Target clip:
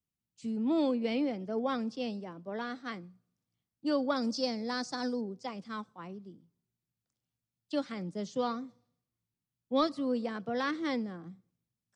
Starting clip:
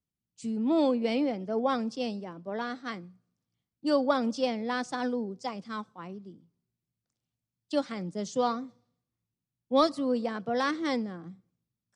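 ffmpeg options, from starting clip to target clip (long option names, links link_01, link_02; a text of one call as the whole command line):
ffmpeg -i in.wav -filter_complex "[0:a]acrossover=split=5200[link_01][link_02];[link_02]acompressor=threshold=-58dB:ratio=4:attack=1:release=60[link_03];[link_01][link_03]amix=inputs=2:normalize=0,asettb=1/sr,asplit=3[link_04][link_05][link_06];[link_04]atrim=end=4.164[link_07];[link_05]atrim=start=4.16:end=5.21,asetpts=PTS-STARTPTS,afade=type=in:duration=0.004:curve=qsin,afade=type=out:start_time=1.046:duration=0.004:curve=qsin,highshelf=frequency=3800:width_type=q:width=3:gain=6.5[link_08];[link_06]atrim=start=5.206[link_09];[link_07][link_08]acrossfade=duration=0.004:curve1=hsin:curve2=qsin[link_10];[link_10][link_09]acrossfade=duration=0.004:curve1=qsin:curve2=hsin,acrossover=split=590|970[link_11][link_12][link_13];[link_12]acompressor=threshold=-45dB:ratio=6[link_14];[link_11][link_14][link_13]amix=inputs=3:normalize=0,volume=-2.5dB" out.wav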